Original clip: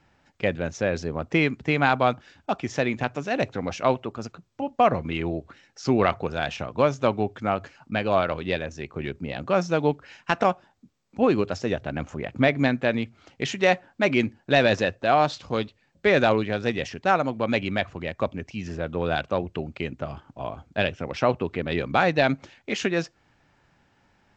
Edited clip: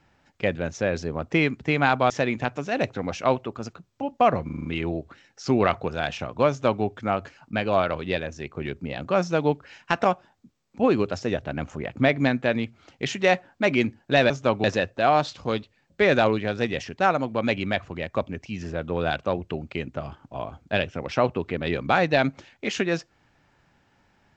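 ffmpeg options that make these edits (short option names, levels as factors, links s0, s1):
-filter_complex "[0:a]asplit=9[s0][s1][s2][s3][s4][s5][s6][s7][s8];[s0]atrim=end=2.102[s9];[s1]atrim=start=2.688:end=5.082[s10];[s2]atrim=start=5.038:end=5.082[s11];[s3]atrim=start=5.038:end=5.082[s12];[s4]atrim=start=5.038:end=5.082[s13];[s5]atrim=start=5.038:end=5.082[s14];[s6]atrim=start=5.038:end=14.692[s15];[s7]atrim=start=6.878:end=7.222[s16];[s8]atrim=start=14.688[s17];[s9][s10]acrossfade=d=0.004:c1=hsin:c2=hsin[s18];[s18][s11]acrossfade=d=0.004:c1=hsin:c2=hsin[s19];[s19][s12]acrossfade=d=0.004:c1=hsin:c2=hsin[s20];[s20][s13]acrossfade=d=0.004:c1=hsin:c2=hsin[s21];[s21][s14]acrossfade=d=0.004:c1=hsin:c2=hsin[s22];[s22][s15]acrossfade=d=0.004:c1=hsin:c2=hsin[s23];[s23][s16]acrossfade=d=0.004:c1=hsin:c2=hsin[s24];[s24][s17]acrossfade=d=0.004:c1=hsin:c2=hsin"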